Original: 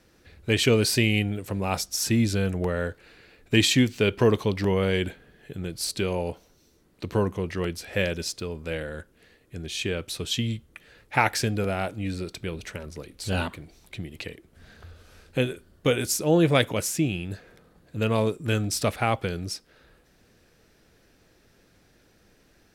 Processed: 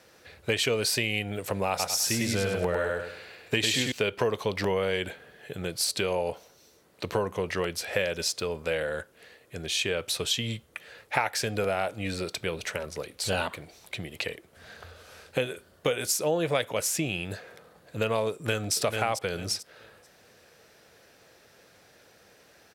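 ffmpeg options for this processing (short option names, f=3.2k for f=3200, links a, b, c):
-filter_complex "[0:a]asettb=1/sr,asplit=3[a][b][c];[a]atrim=end=1.694[d];[b]atrim=start=1.69:end=3.92,asetpts=PTS-STARTPTS,afade=t=in:d=0.004:c=qsin,afade=t=out:st=2.226:d=0.004:c=qsin,aecho=1:1:101|202|303|404:0.708|0.219|0.068|0.0211,atrim=end_sample=98343[e];[c]atrim=start=3.916[f];[d][e]acrossfade=d=0.004:c1=hsin:c2=qsin[g];[g][f]acrossfade=d=0.004:c1=qsin:c2=hsin,asplit=2[h][i];[i]afade=t=in:st=18.32:d=0.01,afade=t=out:st=18.74:d=0.01,aecho=0:1:440|880|1320:0.668344|0.100252|0.0150377[j];[h][j]amix=inputs=2:normalize=0,highpass=86,lowshelf=f=400:t=q:w=1.5:g=-7,acompressor=threshold=-30dB:ratio=4,volume=5.5dB"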